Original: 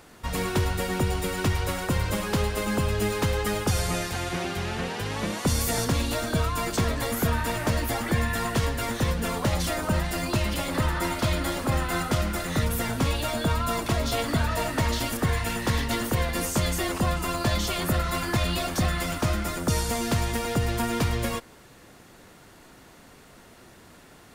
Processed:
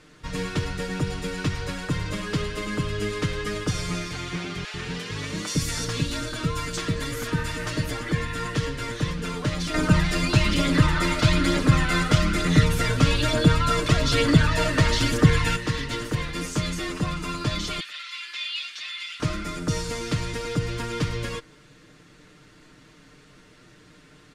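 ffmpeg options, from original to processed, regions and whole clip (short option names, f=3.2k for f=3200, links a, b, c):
-filter_complex "[0:a]asettb=1/sr,asplit=3[a][b][c];[a]atrim=end=4.644[d];[b]atrim=start=4.64:end=7.91,asetpts=PTS-STARTPTS,afade=t=in:d=0.004:c=qsin,afade=t=out:st=3.266:d=0.004:c=qsin,highshelf=f=5.6k:g=5,acrossover=split=590[e][f];[e]adelay=100[g];[g][f]amix=inputs=2:normalize=0,atrim=end_sample=144207[h];[c]atrim=start=7.906[i];[d][h]acrossfade=d=0.004:c1=hsin:c2=qsin[j];[j][i]acrossfade=d=0.004:c1=qsin:c2=hsin,asettb=1/sr,asplit=3[k][l][m];[k]atrim=end=9.744[n];[l]atrim=start=9.74:end=15.56,asetpts=PTS-STARTPTS,afade=t=in:d=0.004:c=qsin,afade=t=out:st=5.816:d=0.004:c=qsin,acontrast=67,aphaser=in_gain=1:out_gain=1:delay=1.9:decay=0.32:speed=1.1:type=triangular[o];[m]atrim=start=15.556[p];[n][o]acrossfade=d=0.004:c1=hsin:c2=qsin[q];[q][p]acrossfade=d=0.004:c1=qsin:c2=hsin,asettb=1/sr,asplit=3[r][s][t];[r]atrim=end=17.804[u];[s]atrim=start=17.8:end=19.2,asetpts=PTS-STARTPTS,afade=t=in:d=0.004:c=qsin,afade=t=out:st=1.396:d=0.004:c=qsin,acrossover=split=4800[v][w];[w]acompressor=threshold=-50dB:ratio=4:attack=1:release=60[x];[v][x]amix=inputs=2:normalize=0,highpass=f=2.8k:t=q:w=1.6[y];[t]atrim=start=19.196[z];[u][y]acrossfade=d=0.004:c1=hsin:c2=qsin[aa];[aa][z]acrossfade=d=0.004:c1=qsin:c2=hsin,lowpass=6.3k,equalizer=f=780:w=1.8:g=-11,aecho=1:1:6.6:0.65,volume=-1dB"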